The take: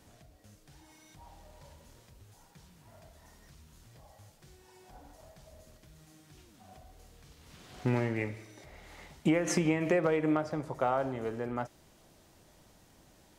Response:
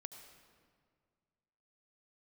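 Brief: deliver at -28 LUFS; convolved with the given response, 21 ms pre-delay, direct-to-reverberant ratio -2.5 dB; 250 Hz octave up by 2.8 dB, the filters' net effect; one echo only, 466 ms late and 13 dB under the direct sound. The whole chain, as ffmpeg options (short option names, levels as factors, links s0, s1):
-filter_complex "[0:a]equalizer=f=250:t=o:g=4,aecho=1:1:466:0.224,asplit=2[s0][s1];[1:a]atrim=start_sample=2205,adelay=21[s2];[s1][s2]afir=irnorm=-1:irlink=0,volume=2.37[s3];[s0][s3]amix=inputs=2:normalize=0,volume=0.841"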